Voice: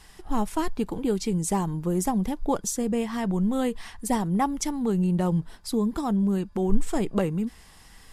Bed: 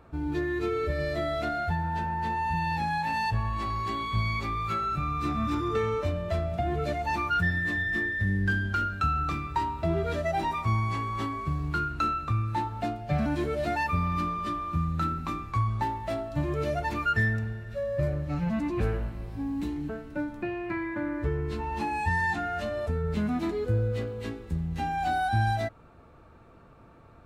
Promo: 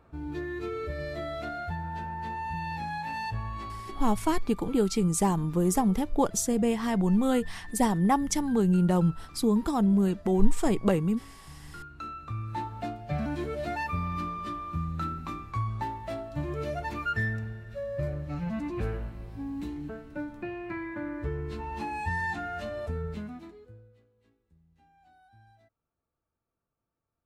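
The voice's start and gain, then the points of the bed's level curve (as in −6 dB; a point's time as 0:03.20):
3.70 s, +0.5 dB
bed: 0:03.56 −5.5 dB
0:04.48 −20.5 dB
0:11.45 −20.5 dB
0:12.61 −4 dB
0:23.02 −4 dB
0:24.03 −33.5 dB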